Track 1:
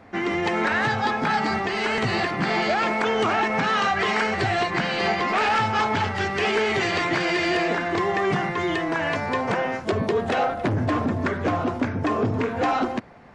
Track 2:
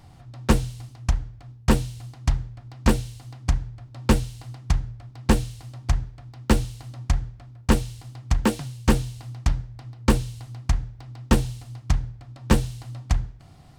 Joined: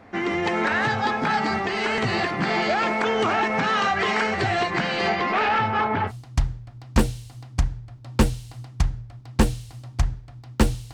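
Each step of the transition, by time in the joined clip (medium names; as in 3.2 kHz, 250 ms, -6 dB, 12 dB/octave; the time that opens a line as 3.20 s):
track 1
5.09–6.12 s: low-pass 6.2 kHz -> 1.6 kHz
6.09 s: go over to track 2 from 1.99 s, crossfade 0.06 s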